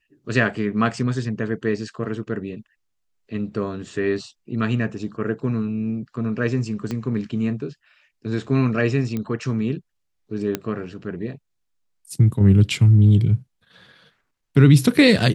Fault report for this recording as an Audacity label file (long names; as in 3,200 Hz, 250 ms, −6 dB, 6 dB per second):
6.910000	6.910000	click −15 dBFS
9.170000	9.170000	click −15 dBFS
10.550000	10.550000	click −9 dBFS